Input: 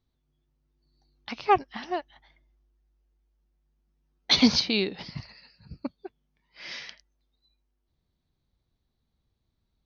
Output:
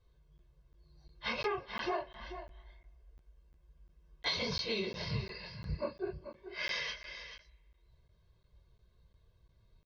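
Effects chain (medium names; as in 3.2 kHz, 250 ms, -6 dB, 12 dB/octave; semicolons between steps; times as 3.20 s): phase randomisation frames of 100 ms; low-pass 3 kHz 6 dB/octave; comb 1.9 ms, depth 98%; in parallel at +1.5 dB: peak limiter -18.5 dBFS, peak gain reduction 9 dB; on the sum: compression 20:1, threshold -31 dBFS, peak gain reduction 20.5 dB; delay 437 ms -11 dB; on a send at -21 dB: reverberation RT60 1.6 s, pre-delay 38 ms; on the sum: crackling interface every 0.35 s, samples 512, zero, from 0.38 s; trim -1 dB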